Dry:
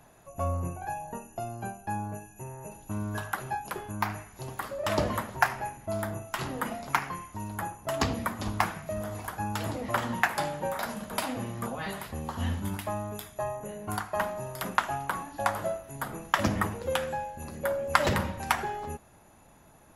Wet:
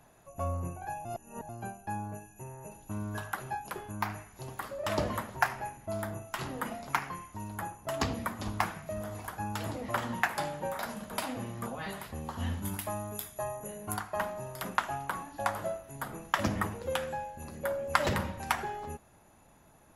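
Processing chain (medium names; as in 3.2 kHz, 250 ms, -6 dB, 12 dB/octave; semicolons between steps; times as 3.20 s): 1.05–1.49 s: reverse; 12.62–13.94 s: treble shelf 7.6 kHz +11.5 dB; trim -3.5 dB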